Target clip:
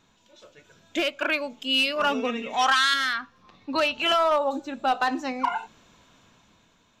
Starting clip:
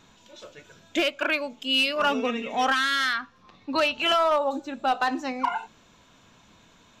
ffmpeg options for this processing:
-filter_complex "[0:a]asettb=1/sr,asplit=3[s0][s1][s2];[s0]atrim=end=2.534[s3];[s1]atrim=start=2.53:end=2.94,asetpts=PTS-STARTPTS,afade=t=in:d=0.004:c=qsin,afade=t=out:st=0.406:d=0.004:c=qsin,equalizer=f=250:t=o:w=1:g=-7,equalizer=f=500:t=o:w=1:g=-6,equalizer=f=1000:t=o:w=1:g=7,equalizer=f=4000:t=o:w=1:g=6,equalizer=f=8000:t=o:w=1:g=6[s4];[s2]atrim=start=2.936[s5];[s3][s4]acrossfade=d=0.004:c1=hsin:c2=qsin[s6];[s6][s5]acrossfade=d=0.004:c1=qsin:c2=hsin,dynaudnorm=f=260:g=7:m=2.37,volume=0.447"

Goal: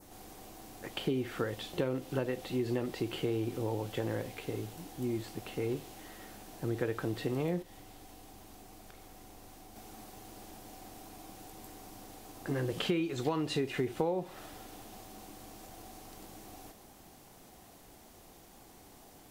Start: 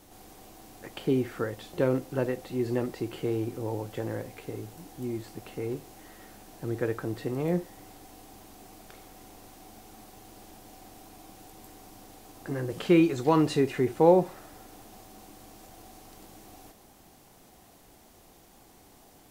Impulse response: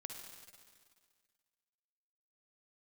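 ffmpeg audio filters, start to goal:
-filter_complex "[0:a]asettb=1/sr,asplit=3[s0][s1][s2];[s0]atrim=end=7.624[s3];[s1]atrim=start=7.62:end=9.76,asetpts=PTS-STARTPTS,afade=t=in:d=0.004:c=qsin,afade=t=out:st=2.136:d=0.004:c=qsin,acrossover=split=120[s4][s5];[s5]acompressor=threshold=0.00282:ratio=6[s6];[s4][s6]amix=inputs=2:normalize=0[s7];[s2]atrim=start=9.756[s8];[s3][s7]acrossfade=d=0.004:c1=hsin:c2=qsin[s9];[s9][s8]acrossfade=d=0.004:c1=qsin:c2=hsin,adynamicequalizer=threshold=0.00158:dfrequency=3200:dqfactor=1.5:tfrequency=3200:tqfactor=1.5:attack=5:release=100:ratio=0.375:range=3:mode=boostabove:tftype=bell,acompressor=threshold=0.0398:ratio=12"

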